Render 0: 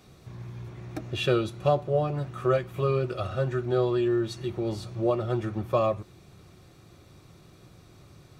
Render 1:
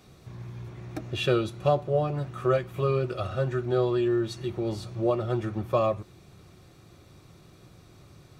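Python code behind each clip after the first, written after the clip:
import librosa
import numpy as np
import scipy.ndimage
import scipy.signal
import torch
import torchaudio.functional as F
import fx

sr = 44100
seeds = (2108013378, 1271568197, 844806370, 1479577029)

y = x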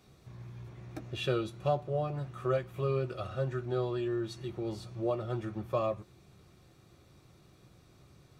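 y = fx.doubler(x, sr, ms=15.0, db=-12)
y = y * 10.0 ** (-7.0 / 20.0)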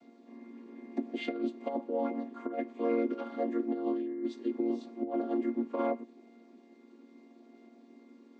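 y = fx.chord_vocoder(x, sr, chord='minor triad', root=58)
y = fx.over_compress(y, sr, threshold_db=-33.0, ratio=-0.5)
y = fx.small_body(y, sr, hz=(260.0, 410.0, 640.0, 2100.0), ring_ms=80, db=12)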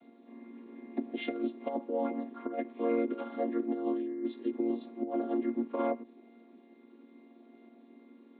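y = scipy.signal.sosfilt(scipy.signal.butter(16, 4000.0, 'lowpass', fs=sr, output='sos'), x)
y = fx.end_taper(y, sr, db_per_s=380.0)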